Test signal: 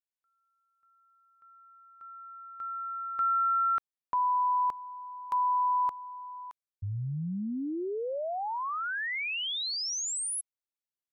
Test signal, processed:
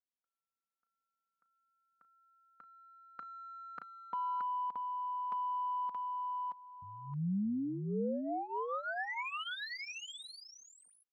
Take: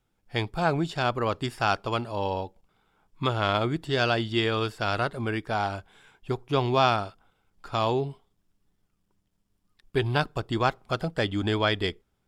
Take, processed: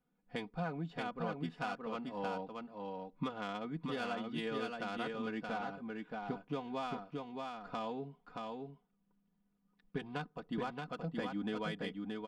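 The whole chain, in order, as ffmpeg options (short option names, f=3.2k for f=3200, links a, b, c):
-af "adynamicsmooth=sensitivity=1:basefreq=2.6k,aecho=1:1:4.1:0.81,acompressor=threshold=-27dB:ratio=6:attack=4.7:release=873:knee=1:detection=rms,lowshelf=f=110:t=q:w=3:g=-10.5,aecho=1:1:625:0.668,volume=-7.5dB"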